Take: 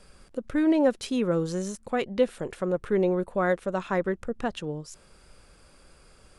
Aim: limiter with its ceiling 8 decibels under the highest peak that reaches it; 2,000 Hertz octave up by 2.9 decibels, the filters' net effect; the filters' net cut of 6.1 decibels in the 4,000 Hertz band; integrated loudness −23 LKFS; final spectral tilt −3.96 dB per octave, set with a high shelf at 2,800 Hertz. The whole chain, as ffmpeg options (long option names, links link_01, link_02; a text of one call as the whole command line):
ffmpeg -i in.wav -af "equalizer=frequency=2000:width_type=o:gain=7.5,highshelf=frequency=2800:gain=-7,equalizer=frequency=4000:width_type=o:gain=-6.5,volume=6.5dB,alimiter=limit=-11.5dB:level=0:latency=1" out.wav